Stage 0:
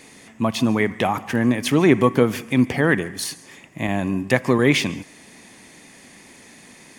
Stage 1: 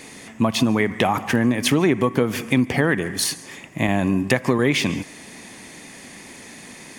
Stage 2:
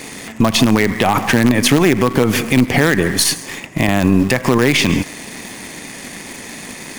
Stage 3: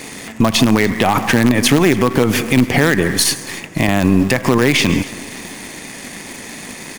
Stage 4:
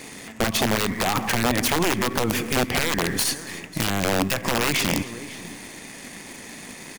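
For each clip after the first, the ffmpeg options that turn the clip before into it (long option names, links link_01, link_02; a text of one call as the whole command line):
ffmpeg -i in.wav -af "acompressor=threshold=-20dB:ratio=6,volume=5.5dB" out.wav
ffmpeg -i in.wav -filter_complex "[0:a]asplit=2[link_01][link_02];[link_02]acrusher=bits=3:dc=4:mix=0:aa=0.000001,volume=-5.5dB[link_03];[link_01][link_03]amix=inputs=2:normalize=0,alimiter=level_in=9dB:limit=-1dB:release=50:level=0:latency=1,volume=-1dB" out.wav
ffmpeg -i in.wav -af "aecho=1:1:280|560|840:0.0891|0.0428|0.0205" out.wav
ffmpeg -i in.wav -af "aecho=1:1:543:0.106,aeval=exprs='(mod(1.88*val(0)+1,2)-1)/1.88':channel_layout=same,volume=-8dB" out.wav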